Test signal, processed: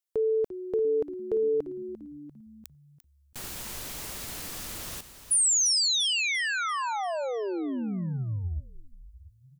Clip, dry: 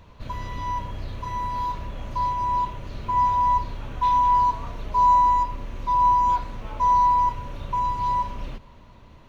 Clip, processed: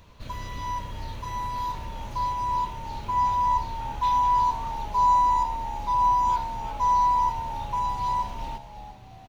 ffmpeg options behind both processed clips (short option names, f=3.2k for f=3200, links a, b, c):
-filter_complex "[0:a]highshelf=f=3.7k:g=10,asplit=6[a][b][c][d][e][f];[b]adelay=345,afreqshift=-74,volume=-12dB[g];[c]adelay=690,afreqshift=-148,volume=-18.6dB[h];[d]adelay=1035,afreqshift=-222,volume=-25.1dB[i];[e]adelay=1380,afreqshift=-296,volume=-31.7dB[j];[f]adelay=1725,afreqshift=-370,volume=-38.2dB[k];[a][g][h][i][j][k]amix=inputs=6:normalize=0,volume=-3.5dB"